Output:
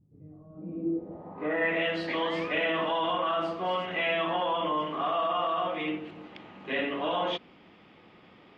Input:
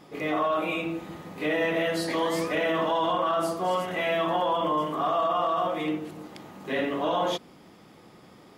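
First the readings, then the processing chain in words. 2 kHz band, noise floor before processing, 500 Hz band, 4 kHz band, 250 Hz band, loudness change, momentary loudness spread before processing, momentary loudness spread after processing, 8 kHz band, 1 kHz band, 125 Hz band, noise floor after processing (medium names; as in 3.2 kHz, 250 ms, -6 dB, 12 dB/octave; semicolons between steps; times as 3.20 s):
0.0 dB, -52 dBFS, -4.0 dB, 0.0 dB, -3.5 dB, -2.5 dB, 9 LU, 13 LU, under -20 dB, -3.5 dB, -5.0 dB, -56 dBFS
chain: low-pass 9.4 kHz; peaking EQ 140 Hz -5.5 dB 0.23 oct; low-pass sweep 110 Hz -> 2.8 kHz, 0.39–1.83 s; trim -4 dB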